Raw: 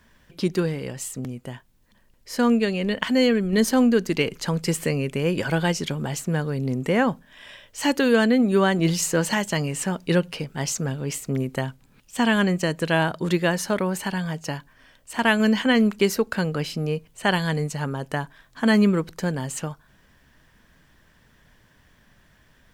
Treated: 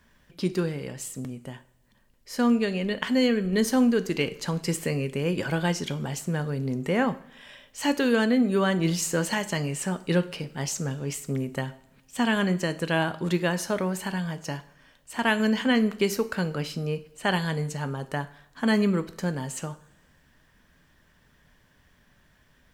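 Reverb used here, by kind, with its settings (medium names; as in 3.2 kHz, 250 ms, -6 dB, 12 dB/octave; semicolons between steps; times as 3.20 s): two-slope reverb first 0.47 s, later 1.7 s, from -19 dB, DRR 10.5 dB; trim -4 dB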